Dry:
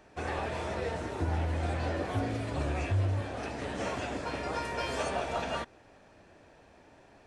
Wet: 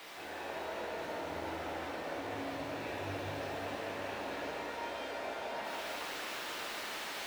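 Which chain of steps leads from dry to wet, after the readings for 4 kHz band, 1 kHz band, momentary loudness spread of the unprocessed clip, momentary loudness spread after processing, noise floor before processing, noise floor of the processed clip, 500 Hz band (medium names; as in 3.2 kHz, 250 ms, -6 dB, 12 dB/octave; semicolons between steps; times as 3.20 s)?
+0.5 dB, -4.0 dB, 5 LU, 1 LU, -59 dBFS, -43 dBFS, -4.5 dB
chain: band-stop 1.2 kHz, Q 5.6; in parallel at -2 dB: word length cut 6-bit, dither triangular; on the sum: three-band isolator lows -18 dB, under 260 Hz, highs -19 dB, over 3.9 kHz; reverse; compression, threshold -43 dBFS, peak gain reduction 18 dB; reverse; peak limiter -39.5 dBFS, peak gain reduction 7.5 dB; pitch-shifted reverb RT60 3.4 s, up +7 st, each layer -8 dB, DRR -9 dB; trim -2 dB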